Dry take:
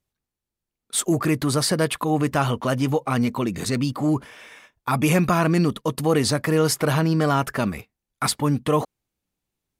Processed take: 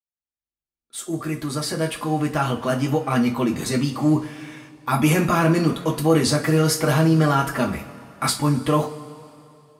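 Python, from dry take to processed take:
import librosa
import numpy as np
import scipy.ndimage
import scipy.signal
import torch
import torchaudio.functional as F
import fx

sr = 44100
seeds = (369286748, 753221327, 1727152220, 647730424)

y = fx.fade_in_head(x, sr, length_s=3.23)
y = fx.rev_double_slope(y, sr, seeds[0], early_s=0.25, late_s=2.7, knee_db=-21, drr_db=0.0)
y = F.gain(torch.from_numpy(y), -1.5).numpy()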